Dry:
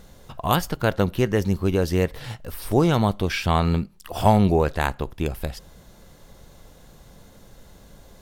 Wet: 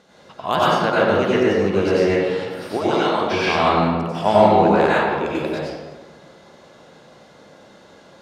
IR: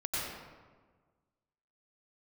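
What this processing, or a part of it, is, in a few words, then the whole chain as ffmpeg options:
supermarket ceiling speaker: -filter_complex "[0:a]asettb=1/sr,asplit=3[link_01][link_02][link_03];[link_01]atrim=end=2.774[link_04];[link_02]atrim=start=2.77:end=3.21,asetpts=PTS-STARTPTS,afade=type=in:duration=0.004:curve=qsin,afade=type=out:start_time=0.436:duration=0.004:curve=qsin,highpass=frequency=770:poles=1[link_05];[link_03]atrim=start=3.206[link_06];[link_04][link_05]acrossfade=duration=0.004:curve1=hsin:curve2=qsin[link_07];[link_07][link_06]acrossfade=duration=0.004:curve1=qsin:curve2=hsin,highpass=270,lowpass=5100[link_08];[1:a]atrim=start_sample=2205[link_09];[link_08][link_09]afir=irnorm=-1:irlink=0,volume=2dB"

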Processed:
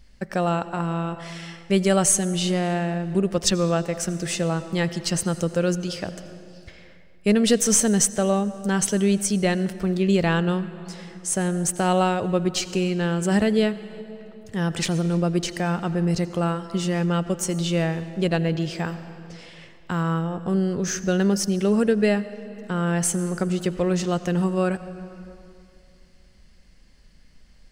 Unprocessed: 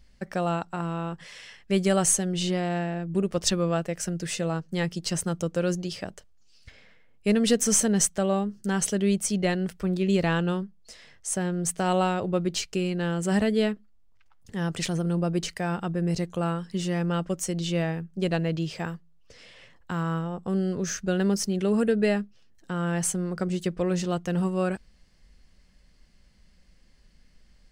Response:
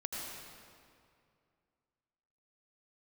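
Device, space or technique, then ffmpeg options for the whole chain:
compressed reverb return: -filter_complex "[0:a]asplit=2[link_01][link_02];[1:a]atrim=start_sample=2205[link_03];[link_02][link_03]afir=irnorm=-1:irlink=0,acompressor=threshold=-26dB:ratio=5,volume=-9dB[link_04];[link_01][link_04]amix=inputs=2:normalize=0,volume=2.5dB"

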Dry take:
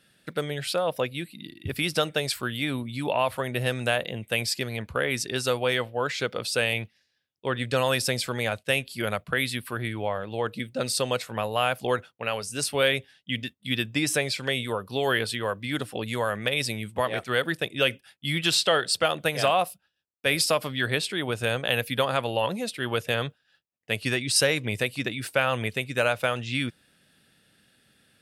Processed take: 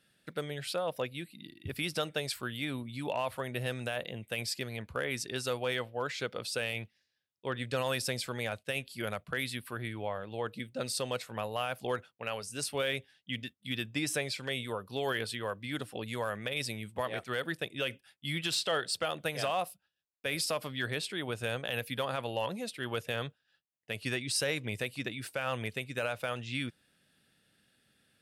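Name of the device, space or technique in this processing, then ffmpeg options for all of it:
limiter into clipper: -af "alimiter=limit=-13.5dB:level=0:latency=1:release=32,asoftclip=type=hard:threshold=-15dB,volume=-7.5dB"

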